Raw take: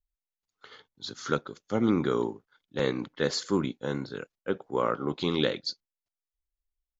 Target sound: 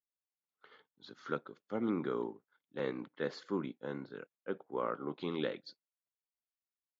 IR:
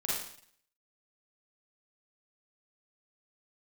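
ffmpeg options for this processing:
-af "highpass=170,lowpass=2.6k,volume=-8.5dB"

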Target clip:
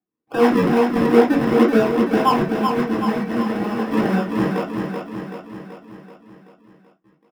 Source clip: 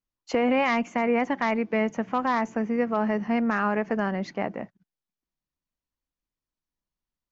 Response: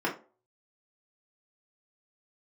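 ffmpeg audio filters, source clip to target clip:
-filter_complex "[0:a]highpass=f=170:p=1,highshelf=f=2.8k:g=-10,asplit=2[a][b];[b]alimiter=limit=-23dB:level=0:latency=1,volume=0dB[c];[a][c]amix=inputs=2:normalize=0,asettb=1/sr,asplit=3[d][e][f];[d]atrim=end=2.444[g];[e]atrim=start=2.44:end=3.85,asetpts=PTS-STARTPTS,afade=t=in:d=0.004:c=qsin,afade=t=out:st=1.406:d=0.004:c=qsin,acompressor=threshold=-25dB:ratio=6[h];[f]atrim=start=3.846[i];[g][h]acrossfade=d=0.004:c1=hsin:c2=qsin[j];[j][i]acrossfade=d=0.004:c1=qsin:c2=hsin,acrossover=split=650[k][l];[k]aeval=exprs='val(0)*(1-1/2+1/2*cos(2*PI*6.8*n/s))':c=same[m];[l]aeval=exprs='val(0)*(1-1/2-1/2*cos(2*PI*6.8*n/s))':c=same[n];[m][n]amix=inputs=2:normalize=0,acrusher=samples=41:mix=1:aa=0.000001:lfo=1:lforange=41:lforate=2.1,aecho=1:1:381|762|1143|1524|1905|2286|2667:0.562|0.315|0.176|0.0988|0.0553|0.031|0.0173[o];[1:a]atrim=start_sample=2205,atrim=end_sample=3087[p];[o][p]afir=irnorm=-1:irlink=0,volume=-1dB"

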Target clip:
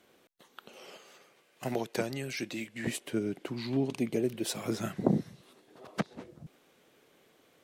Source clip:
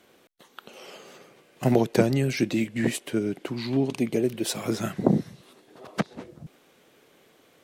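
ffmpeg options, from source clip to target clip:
-filter_complex "[0:a]asettb=1/sr,asplit=3[a][b][c];[a]atrim=end=0.974[d];[b]atrim=start=0.97:end=2.87,asetpts=PTS-STARTPTS,afade=t=in:d=0.004:c=qsin,afade=t=out:st=1.896:d=0.004:c=qsin,lowshelf=f=490:g=-11[e];[c]atrim=start=2.866[f];[d][e]acrossfade=d=0.004:c1=hsin:c2=qsin[g];[g][f]acrossfade=d=0.004:c1=qsin:c2=hsin,volume=-5.5dB"

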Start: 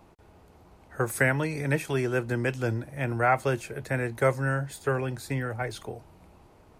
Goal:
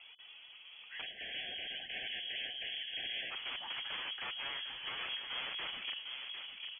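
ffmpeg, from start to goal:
-filter_complex "[0:a]lowshelf=f=220:g=-3.5,bandreject=f=96.86:t=h:w=4,bandreject=f=193.72:t=h:w=4,bandreject=f=290.58:t=h:w=4,bandreject=f=387.44:t=h:w=4,bandreject=f=484.3:t=h:w=4,acompressor=threshold=-36dB:ratio=2,alimiter=level_in=5dB:limit=-24dB:level=0:latency=1:release=48,volume=-5dB,asoftclip=type=tanh:threshold=-39.5dB,flanger=delay=1.4:depth=6.4:regen=27:speed=0.46:shape=triangular,aeval=exprs='(mod(133*val(0)+1,2)-1)/133':c=same,asplit=2[a][b];[b]adelay=753,lowpass=f=1.1k:p=1,volume=-3dB,asplit=2[c][d];[d]adelay=753,lowpass=f=1.1k:p=1,volume=0.49,asplit=2[e][f];[f]adelay=753,lowpass=f=1.1k:p=1,volume=0.49,asplit=2[g][h];[h]adelay=753,lowpass=f=1.1k:p=1,volume=0.49,asplit=2[i][j];[j]adelay=753,lowpass=f=1.1k:p=1,volume=0.49,asplit=2[k][l];[l]adelay=753,lowpass=f=1.1k:p=1,volume=0.49[m];[a][c][e][g][i][k][m]amix=inputs=7:normalize=0,lowpass=f=2.9k:t=q:w=0.5098,lowpass=f=2.9k:t=q:w=0.6013,lowpass=f=2.9k:t=q:w=0.9,lowpass=f=2.9k:t=q:w=2.563,afreqshift=-3400,asplit=3[n][o][p];[n]afade=t=out:st=1.01:d=0.02[q];[o]asuperstop=centerf=1100:order=20:qfactor=1.4,afade=t=in:st=1.01:d=0.02,afade=t=out:st=3.3:d=0.02[r];[p]afade=t=in:st=3.3:d=0.02[s];[q][r][s]amix=inputs=3:normalize=0,volume=6dB"

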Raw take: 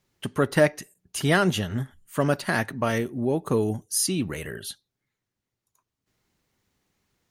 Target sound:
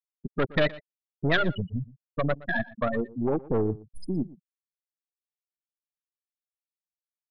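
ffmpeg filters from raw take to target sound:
-filter_complex "[0:a]aeval=exprs='0.501*(cos(1*acos(clip(val(0)/0.501,-1,1)))-cos(1*PI/2))+0.0141*(cos(2*acos(clip(val(0)/0.501,-1,1)))-cos(2*PI/2))+0.0631*(cos(3*acos(clip(val(0)/0.501,-1,1)))-cos(3*PI/2))+0.0891*(cos(6*acos(clip(val(0)/0.501,-1,1)))-cos(6*PI/2))+0.0178*(cos(8*acos(clip(val(0)/0.501,-1,1)))-cos(8*PI/2))':c=same,afftfilt=real='re*gte(hypot(re,im),0.178)':imag='im*gte(hypot(re,im),0.178)':win_size=1024:overlap=0.75,asoftclip=type=tanh:threshold=-19.5dB,lowpass=f=3.8k:t=q:w=3.8,asplit=2[a][b];[b]aecho=0:1:119:0.1[c];[a][c]amix=inputs=2:normalize=0,volume=3dB"

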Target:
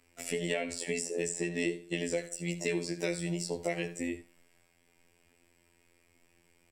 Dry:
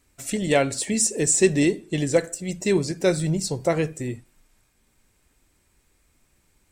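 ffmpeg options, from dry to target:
-filter_complex "[0:a]bass=f=250:g=-11,treble=f=4k:g=-8,alimiter=limit=-13dB:level=0:latency=1:release=177,afftfilt=real='hypot(re,im)*cos(PI*b)':imag='0':win_size=2048:overlap=0.75,aecho=1:1:12|75:0.596|0.178,acrossover=split=140|2000[a][b][c];[a]acompressor=threshold=-52dB:ratio=4[d];[b]acompressor=threshold=-37dB:ratio=4[e];[c]acompressor=threshold=-40dB:ratio=4[f];[d][e][f]amix=inputs=3:normalize=0,volume=4dB"

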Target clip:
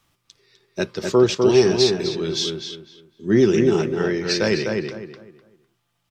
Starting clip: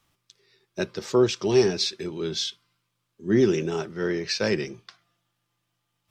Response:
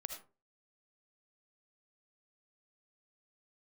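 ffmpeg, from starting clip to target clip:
-filter_complex "[0:a]asplit=2[a][b];[b]adelay=252,lowpass=f=2.5k:p=1,volume=-3.5dB,asplit=2[c][d];[d]adelay=252,lowpass=f=2.5k:p=1,volume=0.29,asplit=2[e][f];[f]adelay=252,lowpass=f=2.5k:p=1,volume=0.29,asplit=2[g][h];[h]adelay=252,lowpass=f=2.5k:p=1,volume=0.29[i];[a][c][e][g][i]amix=inputs=5:normalize=0,volume=4dB"

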